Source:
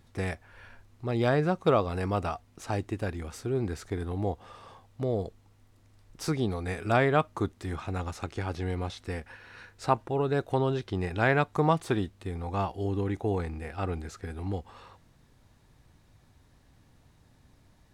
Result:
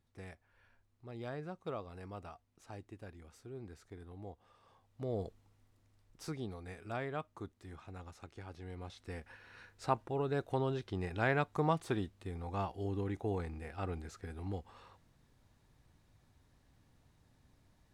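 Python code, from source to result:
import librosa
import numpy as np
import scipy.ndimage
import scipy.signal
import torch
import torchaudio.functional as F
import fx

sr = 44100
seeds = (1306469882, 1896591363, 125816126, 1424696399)

y = fx.gain(x, sr, db=fx.line((4.6, -18.0), (5.23, -6.5), (6.92, -16.0), (8.62, -16.0), (9.31, -7.5)))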